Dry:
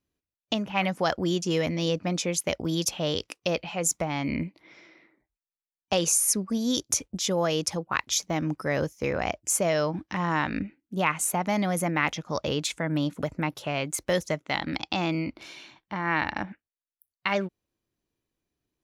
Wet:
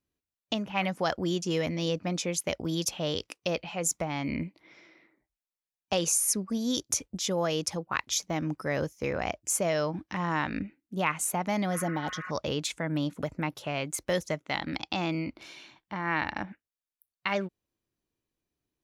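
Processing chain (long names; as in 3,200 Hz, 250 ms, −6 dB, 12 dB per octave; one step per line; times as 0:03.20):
healed spectral selection 0:11.76–0:12.28, 960–2,900 Hz before
level −3 dB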